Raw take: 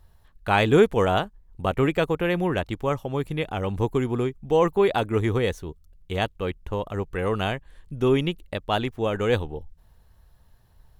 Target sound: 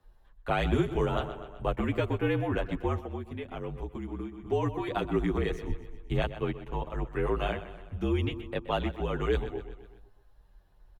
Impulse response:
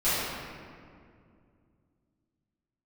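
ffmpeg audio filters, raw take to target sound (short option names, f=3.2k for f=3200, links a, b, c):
-filter_complex "[0:a]asettb=1/sr,asplit=3[a][b][c];[a]atrim=end=5.684[d];[b]atrim=start=5.68:end=6.18,asetpts=PTS-STARTPTS,afade=t=in:d=0.004:c=qsin,afade=t=out:st=0.496:d=0.004:c=qsin,bass=f=250:g=12,treble=f=4k:g=2[e];[c]atrim=start=6.176[f];[d][e]acrossfade=d=0.004:c1=hsin:c2=qsin[g];[g][f]acrossfade=d=0.004:c1=qsin:c2=hsin,aecho=1:1:126|252|378|504|630:0.188|0.104|0.057|0.0313|0.0172,afreqshift=-50,acrossover=split=120|3000[h][i][j];[i]acompressor=threshold=-22dB:ratio=6[k];[h][k][j]amix=inputs=3:normalize=0,highshelf=f=4k:g=-11,asplit=3[l][m][n];[l]afade=t=out:st=2.99:d=0.02[o];[m]acompressor=threshold=-31dB:ratio=6,afade=t=in:st=2.99:d=0.02,afade=t=out:st=4.45:d=0.02[p];[n]afade=t=in:st=4.45:d=0.02[q];[o][p][q]amix=inputs=3:normalize=0,asplit=2[r][s];[s]adelay=8.3,afreqshift=-0.37[t];[r][t]amix=inputs=2:normalize=1"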